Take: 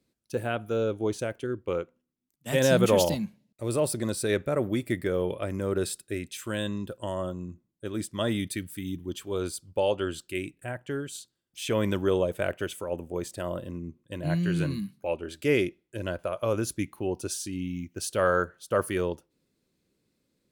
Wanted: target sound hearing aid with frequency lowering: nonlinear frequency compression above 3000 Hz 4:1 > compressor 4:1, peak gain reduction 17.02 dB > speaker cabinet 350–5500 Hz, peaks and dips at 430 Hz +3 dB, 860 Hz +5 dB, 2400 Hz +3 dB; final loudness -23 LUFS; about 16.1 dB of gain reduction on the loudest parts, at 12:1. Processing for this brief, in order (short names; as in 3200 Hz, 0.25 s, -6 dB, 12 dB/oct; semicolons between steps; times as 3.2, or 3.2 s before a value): compressor 12:1, threshold -33 dBFS; nonlinear frequency compression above 3000 Hz 4:1; compressor 4:1, threshold -51 dBFS; speaker cabinet 350–5500 Hz, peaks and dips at 430 Hz +3 dB, 860 Hz +5 dB, 2400 Hz +3 dB; gain +30 dB